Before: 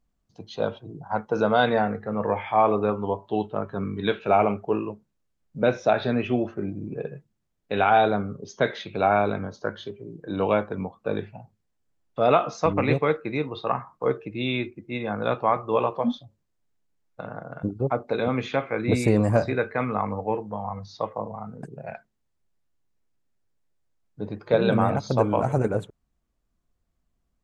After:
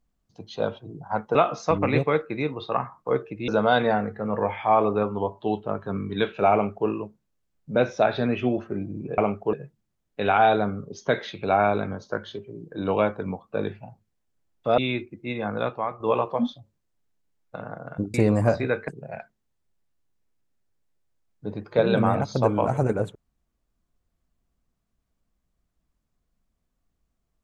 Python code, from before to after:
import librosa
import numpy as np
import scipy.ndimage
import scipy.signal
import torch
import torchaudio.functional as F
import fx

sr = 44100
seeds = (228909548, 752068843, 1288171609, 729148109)

y = fx.edit(x, sr, fx.duplicate(start_s=4.4, length_s=0.35, to_s=7.05),
    fx.move(start_s=12.3, length_s=2.13, to_s=1.35),
    fx.fade_out_to(start_s=15.21, length_s=0.44, curve='qua', floor_db=-8.0),
    fx.cut(start_s=17.79, length_s=1.23),
    fx.cut(start_s=19.76, length_s=1.87), tone=tone)